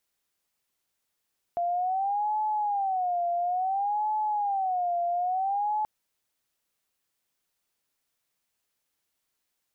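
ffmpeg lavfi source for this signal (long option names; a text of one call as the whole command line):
ffmpeg -f lavfi -i "aevalsrc='0.0596*sin(2*PI*(775*t-82/(2*PI*0.58)*sin(2*PI*0.58*t)))':duration=4.28:sample_rate=44100" out.wav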